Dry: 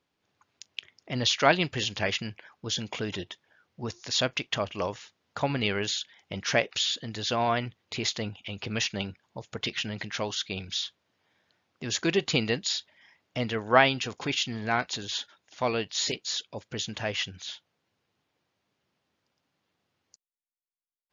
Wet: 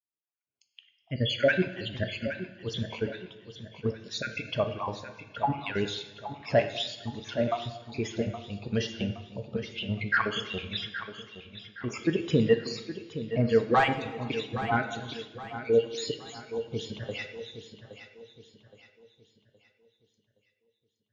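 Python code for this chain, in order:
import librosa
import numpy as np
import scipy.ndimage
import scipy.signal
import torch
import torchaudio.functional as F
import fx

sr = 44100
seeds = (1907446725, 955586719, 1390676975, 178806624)

p1 = fx.spec_dropout(x, sr, seeds[0], share_pct=50)
p2 = fx.peak_eq(p1, sr, hz=1400.0, db=15.0, octaves=1.9, at=(9.97, 11.98))
p3 = fx.fold_sine(p2, sr, drive_db=12, ceiling_db=-5.0)
p4 = p2 + (p3 * 10.0 ** (-3.0 / 20.0))
p5 = fx.high_shelf(p4, sr, hz=4700.0, db=-9.0)
p6 = p5 + fx.echo_feedback(p5, sr, ms=819, feedback_pct=54, wet_db=-8, dry=0)
p7 = fx.rev_plate(p6, sr, seeds[1], rt60_s=1.7, hf_ratio=0.9, predelay_ms=0, drr_db=4.0)
p8 = fx.spectral_expand(p7, sr, expansion=1.5)
y = p8 * 10.0 ** (-8.0 / 20.0)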